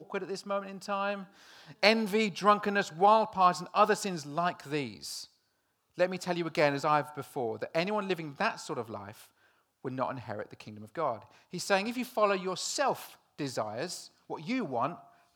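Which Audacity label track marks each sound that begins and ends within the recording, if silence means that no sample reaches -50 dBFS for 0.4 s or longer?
5.980000	9.260000	sound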